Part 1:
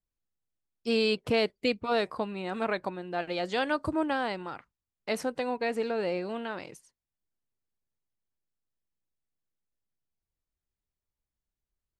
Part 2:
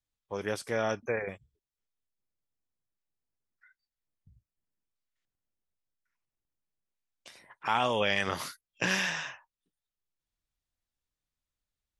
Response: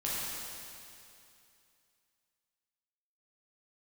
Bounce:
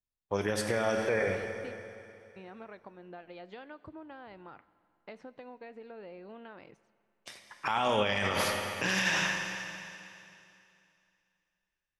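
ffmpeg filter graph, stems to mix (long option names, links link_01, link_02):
-filter_complex "[0:a]lowpass=2900,acompressor=threshold=-36dB:ratio=12,volume=-8dB,asplit=3[link_01][link_02][link_03];[link_01]atrim=end=1.78,asetpts=PTS-STARTPTS,afade=type=out:start_time=1.776:duration=0.004:curve=hsin[link_04];[link_02]atrim=start=1.78:end=2.36,asetpts=PTS-STARTPTS,volume=0[link_05];[link_03]atrim=start=2.36,asetpts=PTS-STARTPTS,afade=type=in:duration=0.004:curve=hsin[link_06];[link_04][link_05][link_06]concat=n=3:v=0:a=1,asplit=2[link_07][link_08];[link_08]volume=-23dB[link_09];[1:a]agate=range=-16dB:threshold=-53dB:ratio=16:detection=peak,volume=3dB,asplit=2[link_10][link_11];[link_11]volume=-8.5dB[link_12];[2:a]atrim=start_sample=2205[link_13];[link_09][link_12]amix=inputs=2:normalize=0[link_14];[link_14][link_13]afir=irnorm=-1:irlink=0[link_15];[link_07][link_10][link_15]amix=inputs=3:normalize=0,alimiter=limit=-18.5dB:level=0:latency=1:release=53"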